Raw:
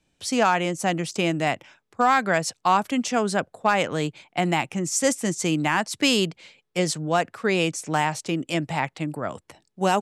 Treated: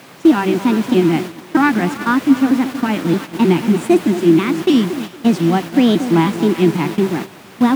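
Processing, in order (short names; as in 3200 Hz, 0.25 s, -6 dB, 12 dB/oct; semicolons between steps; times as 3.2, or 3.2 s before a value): trilling pitch shifter -3 st, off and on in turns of 0.404 s; split-band echo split 820 Hz, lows 0.297 s, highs 0.456 s, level -11 dB; harmonic-percussive split percussive -6 dB; in parallel at -4 dB: bit-crush 5-bit; on the sum: LPF 5900 Hz 12 dB/oct; resonant low shelf 320 Hz +8 dB, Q 3; varispeed +29%; AGC gain up to 8 dB; added noise pink -28 dBFS; HPF 120 Hz 24 dB/oct; gate -22 dBFS, range -9 dB; tone controls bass -2 dB, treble -8 dB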